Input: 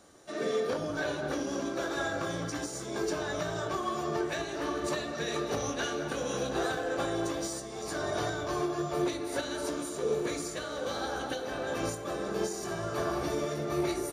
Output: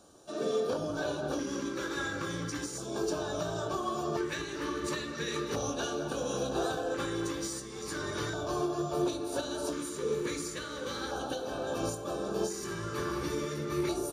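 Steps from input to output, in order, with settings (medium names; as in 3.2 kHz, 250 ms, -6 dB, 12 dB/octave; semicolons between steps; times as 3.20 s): LFO notch square 0.36 Hz 690–2000 Hz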